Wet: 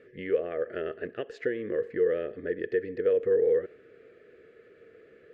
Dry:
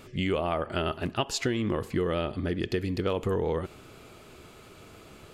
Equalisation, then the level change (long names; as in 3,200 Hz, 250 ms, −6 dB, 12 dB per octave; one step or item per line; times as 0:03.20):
spectral tilt −2 dB per octave
dynamic equaliser 730 Hz, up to +4 dB, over −37 dBFS, Q 0.79
pair of resonant band-passes 910 Hz, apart 1.9 octaves
+4.0 dB